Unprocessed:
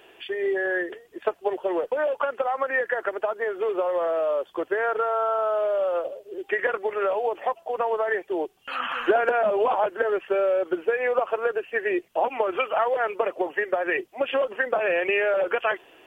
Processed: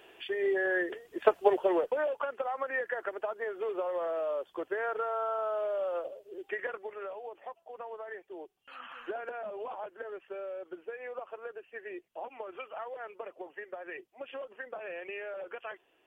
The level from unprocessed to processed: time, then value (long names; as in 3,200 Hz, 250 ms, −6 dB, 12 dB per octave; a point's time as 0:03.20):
0:00.75 −4 dB
0:01.40 +3 dB
0:02.19 −8.5 dB
0:06.35 −8.5 dB
0:07.19 −17.5 dB